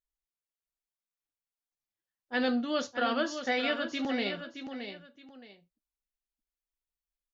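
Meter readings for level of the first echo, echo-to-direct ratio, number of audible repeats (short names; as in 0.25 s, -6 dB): -8.5 dB, -8.0 dB, 2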